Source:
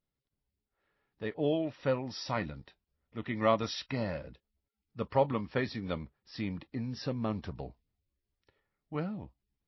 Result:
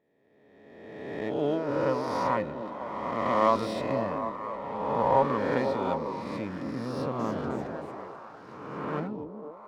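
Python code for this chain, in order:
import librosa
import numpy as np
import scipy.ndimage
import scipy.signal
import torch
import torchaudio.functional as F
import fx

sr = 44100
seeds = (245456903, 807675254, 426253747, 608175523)

y = fx.spec_swells(x, sr, rise_s=1.73)
y = fx.peak_eq(y, sr, hz=990.0, db=9.5, octaves=0.39)
y = fx.echo_stepped(y, sr, ms=250, hz=310.0, octaves=0.7, feedback_pct=70, wet_db=-2.5)
y = fx.echo_pitch(y, sr, ms=312, semitones=3, count=3, db_per_echo=-6.0, at=(6.88, 9.08))
y = scipy.signal.sosfilt(scipy.signal.butter(2, 110.0, 'highpass', fs=sr, output='sos'), y)
y = fx.high_shelf(y, sr, hz=2800.0, db=-11.5)
y = fx.running_max(y, sr, window=3)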